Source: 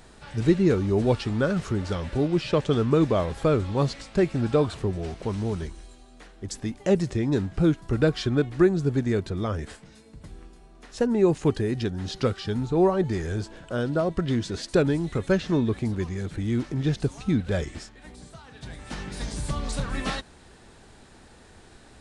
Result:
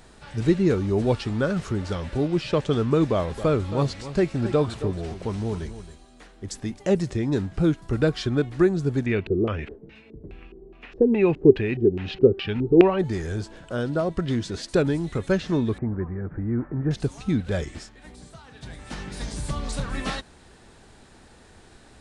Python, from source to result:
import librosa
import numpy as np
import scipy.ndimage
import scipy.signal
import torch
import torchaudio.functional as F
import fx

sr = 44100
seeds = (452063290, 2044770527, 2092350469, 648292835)

y = fx.echo_single(x, sr, ms=272, db=-13.0, at=(3.34, 6.78), fade=0.02)
y = fx.filter_lfo_lowpass(y, sr, shape='square', hz=2.4, low_hz=390.0, high_hz=2600.0, q=5.9, at=(9.06, 12.99))
y = fx.steep_lowpass(y, sr, hz=1700.0, slope=36, at=(15.78, 16.91))